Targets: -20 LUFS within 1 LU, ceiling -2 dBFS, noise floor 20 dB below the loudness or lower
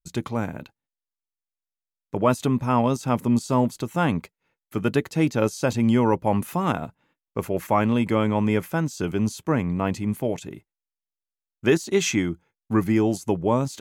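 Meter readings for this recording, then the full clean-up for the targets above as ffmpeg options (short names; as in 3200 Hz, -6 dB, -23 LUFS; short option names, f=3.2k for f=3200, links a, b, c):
loudness -24.0 LUFS; peak -8.5 dBFS; loudness target -20.0 LUFS
-> -af "volume=4dB"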